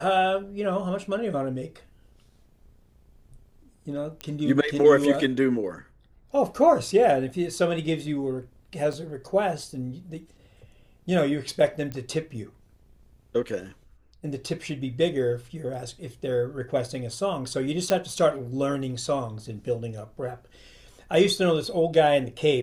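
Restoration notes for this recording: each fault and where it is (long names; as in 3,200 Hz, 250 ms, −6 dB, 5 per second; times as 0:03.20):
0:04.21: click −18 dBFS
0:08.93: drop-out 3.6 ms
0:11.92: click −21 dBFS
0:17.90: click −9 dBFS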